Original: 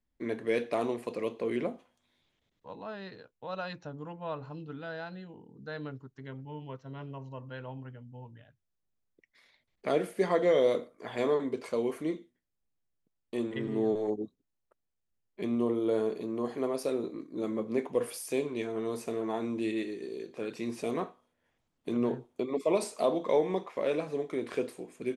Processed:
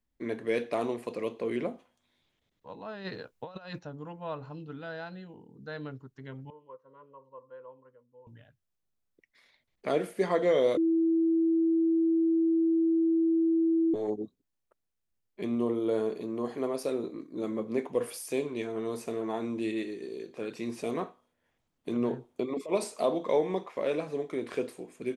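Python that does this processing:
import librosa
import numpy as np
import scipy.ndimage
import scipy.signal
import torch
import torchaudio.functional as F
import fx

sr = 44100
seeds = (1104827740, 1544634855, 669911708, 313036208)

y = fx.over_compress(x, sr, threshold_db=-43.0, ratio=-0.5, at=(3.04, 3.78), fade=0.02)
y = fx.double_bandpass(y, sr, hz=730.0, octaves=1.0, at=(6.5, 8.27))
y = fx.over_compress(y, sr, threshold_db=-30.0, ratio=-0.5, at=(22.26, 22.71), fade=0.02)
y = fx.edit(y, sr, fx.bleep(start_s=10.77, length_s=3.17, hz=328.0, db=-22.0), tone=tone)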